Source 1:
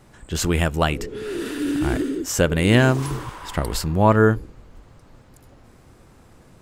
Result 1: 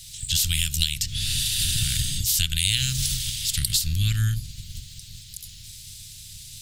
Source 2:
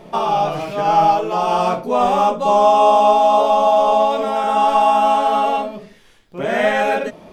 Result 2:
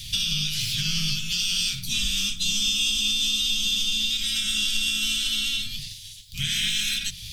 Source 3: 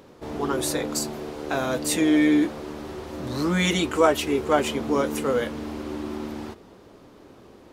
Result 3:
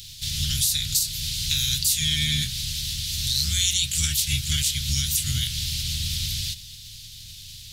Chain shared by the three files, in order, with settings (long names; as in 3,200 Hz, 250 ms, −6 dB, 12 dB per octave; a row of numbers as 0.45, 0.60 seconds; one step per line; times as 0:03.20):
ceiling on every frequency bin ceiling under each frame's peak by 21 dB
Chebyshev band-stop filter 120–3,600 Hz, order 3
mains-hum notches 60/120/180 Hz
dynamic equaliser 1,500 Hz, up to +6 dB, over −52 dBFS, Q 2.1
downward compressor 3 to 1, threshold −37 dBFS
loudness normalisation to −23 LKFS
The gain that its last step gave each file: +14.0, +12.0, +15.0 decibels